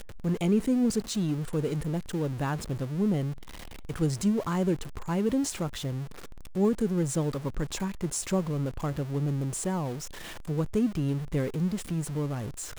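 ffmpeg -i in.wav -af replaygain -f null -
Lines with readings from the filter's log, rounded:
track_gain = +9.9 dB
track_peak = 0.127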